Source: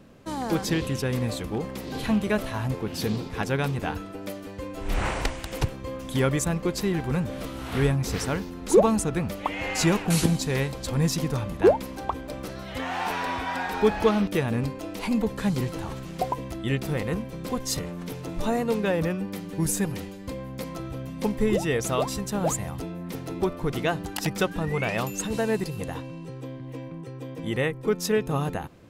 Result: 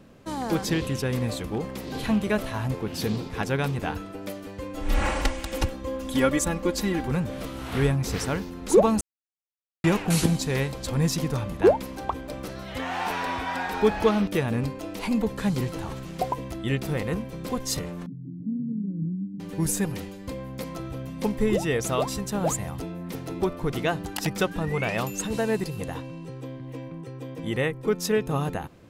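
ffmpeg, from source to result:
-filter_complex "[0:a]asettb=1/sr,asplit=3[s0][s1][s2];[s0]atrim=end=4.744[s3];[s1]atrim=start=4.74:end=7.08,asetpts=PTS-STARTPTS,afade=t=in:d=0.004:c=qsin,afade=t=out:st=2.336:d=0.004:c=qsin,aecho=1:1:3.6:0.69,atrim=end_sample=103194[s4];[s2]atrim=start=7.076[s5];[s3][s4]acrossfade=d=0.004:c1=hsin:c2=qsin[s6];[s6][s5]acrossfade=d=0.004:c1=qsin:c2=hsin,asettb=1/sr,asplit=3[s7][s8][s9];[s7]atrim=end=18.064[s10];[s8]atrim=start=18.06:end=19.4,asetpts=PTS-STARTPTS,afade=t=in:d=0.004:c=qsin,afade=t=out:st=1.336:d=0.004:c=qsin,asuperpass=centerf=180:order=8:qfactor=1.1[s11];[s9]atrim=start=19.396[s12];[s10][s11]acrossfade=d=0.004:c1=hsin:c2=qsin[s13];[s13][s12]acrossfade=d=0.004:c1=qsin:c2=hsin,asplit=3[s14][s15][s16];[s14]atrim=end=9.01,asetpts=PTS-STARTPTS,afade=t=out:st=9.006:d=0.004:c=hsin[s17];[s15]atrim=start=9.01:end=9.84,asetpts=PTS-STARTPTS,volume=0[s18];[s16]atrim=start=9.84,asetpts=PTS-STARTPTS,afade=t=in:d=0.004:c=hsin[s19];[s17][s18][s19]concat=n=3:v=0:a=1"

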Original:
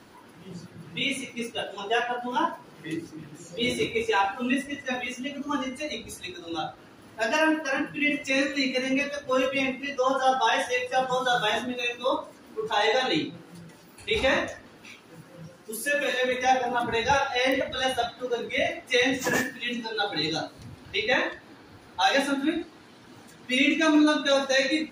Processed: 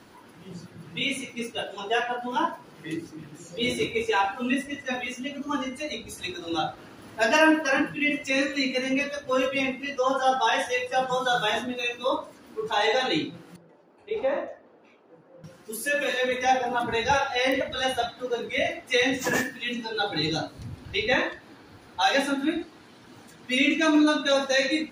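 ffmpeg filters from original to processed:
-filter_complex "[0:a]asettb=1/sr,asplit=3[s0][s1][s2];[s0]atrim=end=13.564[s3];[s1]atrim=start=13.56:end=15.44,asetpts=PTS-STARTPTS,afade=t=in:d=0.004:c=qsin,afade=t=out:st=1.876:d=0.004:c=qsin,bandpass=f=550:t=q:w=1.3[s4];[s2]atrim=start=15.436[s5];[s3][s4]acrossfade=d=0.004:c1=hsin:c2=qsin[s6];[s6][s5]acrossfade=d=0.004:c1=qsin:c2=hsin,asettb=1/sr,asplit=3[s7][s8][s9];[s7]atrim=end=19.884[s10];[s8]atrim=start=19.88:end=21.25,asetpts=PTS-STARTPTS,afade=t=in:d=0.004:c=qsin,afade=t=out:st=1.366:d=0.004:c=qsin,lowshelf=f=160:g=9.5[s11];[s9]atrim=start=21.246[s12];[s10][s11]acrossfade=d=0.004:c1=hsin:c2=qsin[s13];[s13][s12]acrossfade=d=0.004:c1=qsin:c2=hsin,asplit=3[s14][s15][s16];[s14]atrim=end=6.182[s17];[s15]atrim=start=6.178:end=7.942,asetpts=PTS-STARTPTS,volume=1.58[s18];[s16]atrim=start=7.938[s19];[s17][s18]acrossfade=d=0.004:c1=hsin:c2=hsin[s20];[s20][s19]acrossfade=d=0.004:c1=hsin:c2=hsin"

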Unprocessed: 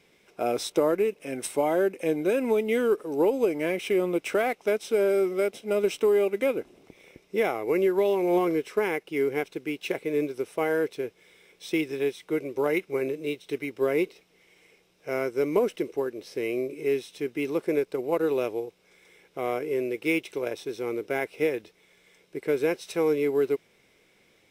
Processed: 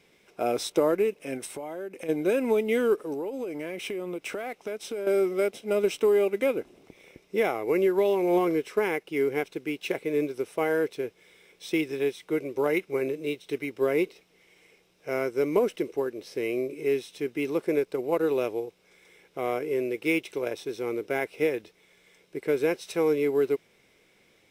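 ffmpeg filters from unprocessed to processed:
-filter_complex "[0:a]asplit=3[s0][s1][s2];[s0]afade=t=out:st=1.37:d=0.02[s3];[s1]acompressor=threshold=0.02:ratio=5:attack=3.2:release=140:knee=1:detection=peak,afade=t=in:st=1.37:d=0.02,afade=t=out:st=2.08:d=0.02[s4];[s2]afade=t=in:st=2.08:d=0.02[s5];[s3][s4][s5]amix=inputs=3:normalize=0,asettb=1/sr,asplit=3[s6][s7][s8];[s6]atrim=end=3.134[s9];[s7]atrim=start=3.13:end=5.07,asetpts=PTS-STARTPTS,afade=t=in:d=0.004:c=qsin,afade=t=out:st=1.936:d=0.004:c=qsin,acompressor=threshold=0.0316:ratio=6:attack=3.2:release=140:knee=1:detection=peak[s10];[s8]atrim=start=5.066[s11];[s9][s10]acrossfade=d=0.004:c1=hsin:c2=qsin[s12];[s12][s11]acrossfade=d=0.004:c1=qsin:c2=hsin"

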